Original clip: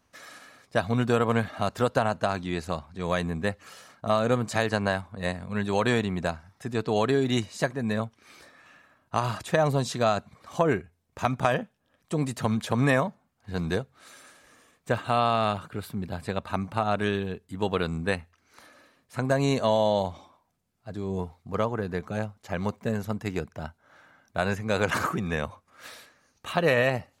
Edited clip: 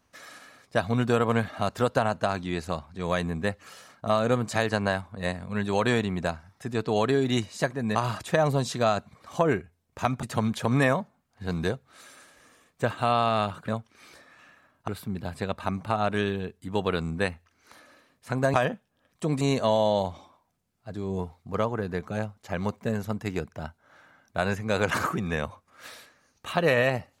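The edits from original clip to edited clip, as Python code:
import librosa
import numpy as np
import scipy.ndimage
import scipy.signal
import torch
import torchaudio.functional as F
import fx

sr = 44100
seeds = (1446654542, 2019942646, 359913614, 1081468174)

y = fx.edit(x, sr, fx.move(start_s=7.95, length_s=1.2, to_s=15.75),
    fx.move(start_s=11.43, length_s=0.87, to_s=19.41), tone=tone)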